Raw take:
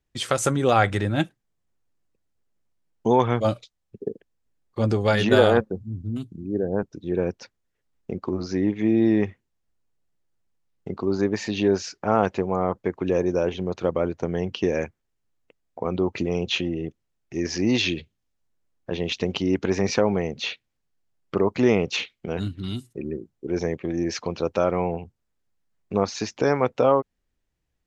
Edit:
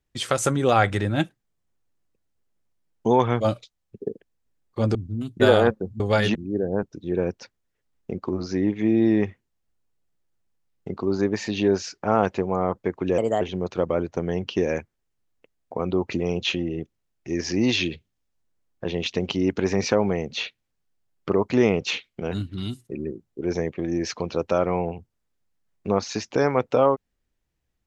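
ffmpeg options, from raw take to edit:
-filter_complex "[0:a]asplit=7[s0][s1][s2][s3][s4][s5][s6];[s0]atrim=end=4.952[s7];[s1]atrim=start=5.898:end=6.352[s8];[s2]atrim=start=5.298:end=5.902[s9];[s3]atrim=start=4.948:end=5.302[s10];[s4]atrim=start=6.348:end=13.184[s11];[s5]atrim=start=13.18:end=13.47,asetpts=PTS-STARTPTS,asetrate=55125,aresample=44100,atrim=end_sample=10231,asetpts=PTS-STARTPTS[s12];[s6]atrim=start=13.466[s13];[s7][s8]acrossfade=d=0.004:c1=hsin:c2=hsin[s14];[s14][s9]acrossfade=d=0.004:c1=hsin:c2=hsin[s15];[s15][s10]acrossfade=d=0.004:c1=hsin:c2=hsin[s16];[s16][s11]acrossfade=d=0.004:c1=hsin:c2=hsin[s17];[s17][s12]acrossfade=d=0.004:c1=hsin:c2=hsin[s18];[s18][s13]acrossfade=d=0.004:c1=hsin:c2=hsin"

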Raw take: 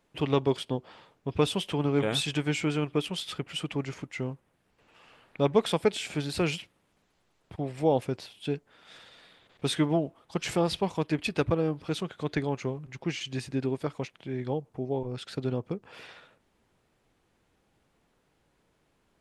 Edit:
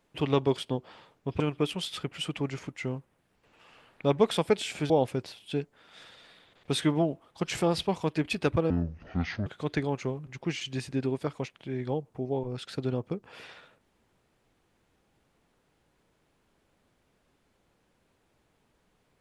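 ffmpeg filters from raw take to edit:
-filter_complex "[0:a]asplit=5[s0][s1][s2][s3][s4];[s0]atrim=end=1.402[s5];[s1]atrim=start=2.748:end=6.252[s6];[s2]atrim=start=7.838:end=11.644[s7];[s3]atrim=start=11.64:end=12.06,asetpts=PTS-STARTPTS,asetrate=24255,aresample=44100,atrim=end_sample=33676,asetpts=PTS-STARTPTS[s8];[s4]atrim=start=12.056[s9];[s5][s6]acrossfade=d=0.004:c1=hsin:c2=hsin[s10];[s10][s7]acrossfade=d=0.004:c1=hsin:c2=hsin[s11];[s11][s8]acrossfade=d=0.004:c1=hsin:c2=hsin[s12];[s12][s9]acrossfade=d=0.004:c1=hsin:c2=hsin"

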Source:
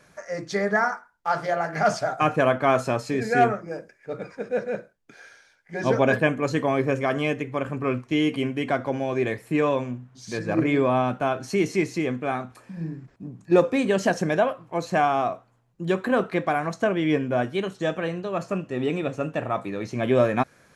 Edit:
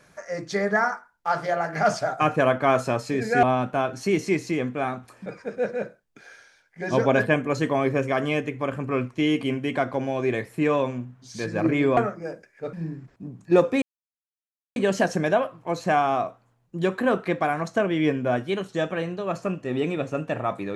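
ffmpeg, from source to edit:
-filter_complex "[0:a]asplit=6[s0][s1][s2][s3][s4][s5];[s0]atrim=end=3.432[s6];[s1]atrim=start=10.898:end=12.732[s7];[s2]atrim=start=4.188:end=10.902[s8];[s3]atrim=start=3.428:end=4.192[s9];[s4]atrim=start=12.728:end=13.82,asetpts=PTS-STARTPTS,afade=t=out:st=1.088:d=0.004:c=hsin,apad=pad_dur=0.94[s10];[s5]atrim=start=13.82,asetpts=PTS-STARTPTS,afade=t=in:d=0.004:c=hsin[s11];[s6][s7]acrossfade=d=0.004:c1=hsin:c2=hsin[s12];[s12][s8]acrossfade=d=0.004:c1=hsin:c2=hsin[s13];[s13][s9]acrossfade=d=0.004:c1=hsin:c2=hsin[s14];[s10][s11]concat=n=2:v=0:a=1[s15];[s14][s15]acrossfade=d=0.004:c1=hsin:c2=hsin"

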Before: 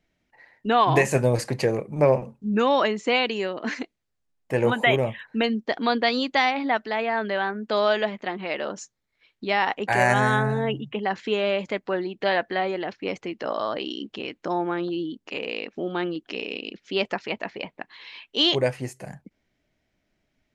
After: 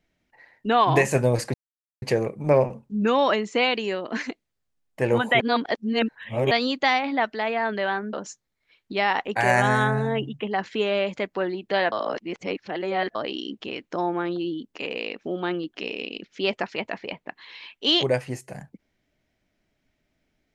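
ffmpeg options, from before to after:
-filter_complex "[0:a]asplit=7[s0][s1][s2][s3][s4][s5][s6];[s0]atrim=end=1.54,asetpts=PTS-STARTPTS,afade=t=out:st=1.536:d=0.004:c=hsin,apad=pad_dur=0.48[s7];[s1]atrim=start=1.54:end=4.922,asetpts=PTS-STARTPTS,afade=t=in:d=0.004:c=hsin[s8];[s2]atrim=start=4.918:end=6.032,asetpts=PTS-STARTPTS,areverse[s9];[s3]atrim=start=6.028:end=7.652[s10];[s4]atrim=start=8.648:end=12.442[s11];[s5]atrim=start=12.438:end=13.672,asetpts=PTS-STARTPTS,areverse[s12];[s6]atrim=start=13.668[s13];[s7][s8]concat=n=2:v=0:a=1[s14];[s14][s9]acrossfade=d=0.004:c1=hsin:c2=hsin[s15];[s15][s10]acrossfade=d=0.004:c1=hsin:c2=hsin[s16];[s16][s11]acrossfade=d=0.004:c1=hsin:c2=hsin[s17];[s17][s12]acrossfade=d=0.004:c1=hsin:c2=hsin[s18];[s18][s13]acrossfade=d=0.004:c1=hsin:c2=hsin"

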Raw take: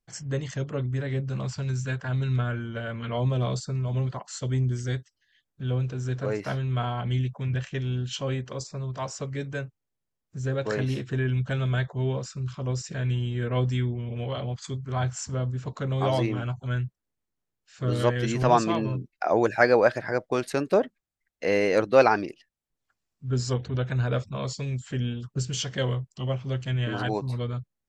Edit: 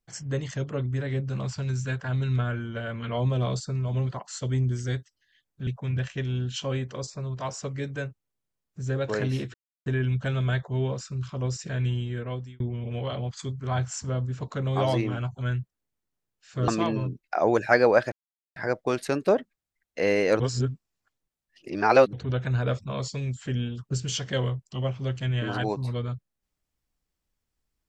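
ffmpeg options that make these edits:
-filter_complex "[0:a]asplit=8[s0][s1][s2][s3][s4][s5][s6][s7];[s0]atrim=end=5.672[s8];[s1]atrim=start=7.238:end=11.11,asetpts=PTS-STARTPTS,afade=t=out:st=3.868:d=0.004:c=hsin,apad=pad_dur=0.32[s9];[s2]atrim=start=11.11:end=13.85,asetpts=PTS-STARTPTS,afade=t=in:d=0.004:c=hsin,afade=t=out:st=2.08:d=0.66[s10];[s3]atrim=start=13.85:end=17.932,asetpts=PTS-STARTPTS,afade=t=in:d=0.004:c=hsin[s11];[s4]atrim=start=18.568:end=20.01,asetpts=PTS-STARTPTS,afade=t=out:st=1.438:d=0.004:c=hsin,apad=pad_dur=0.44[s12];[s5]atrim=start=20.01:end=21.852,asetpts=PTS-STARTPTS,afade=t=in:d=0.004:c=hsin[s13];[s6]atrim=start=21.848:end=23.582,asetpts=PTS-STARTPTS,areverse[s14];[s7]atrim=start=23.578[s15];[s9][s10][s11]concat=n=3:v=0:a=1[s16];[s8][s16]acrossfade=d=0.004:c1=hsin:c2=hsin[s17];[s12][s13]concat=n=2:v=0:a=1[s18];[s17][s18]acrossfade=d=0.004:c1=hsin:c2=hsin[s19];[s19][s14]acrossfade=d=0.004:c1=hsin:c2=hsin[s20];[s20][s15]acrossfade=d=0.004:c1=hsin:c2=hsin"

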